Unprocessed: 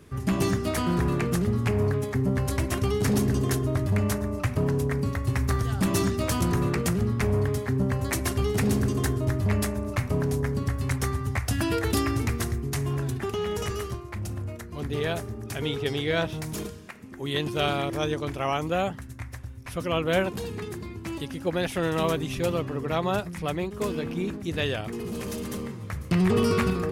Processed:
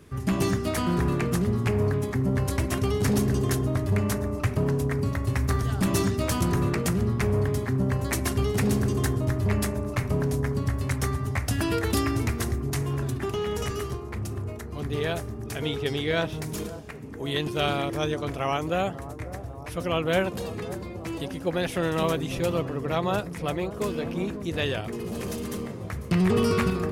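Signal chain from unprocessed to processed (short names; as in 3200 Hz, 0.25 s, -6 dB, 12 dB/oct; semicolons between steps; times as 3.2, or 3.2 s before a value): analogue delay 0.545 s, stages 4096, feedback 77%, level -15 dB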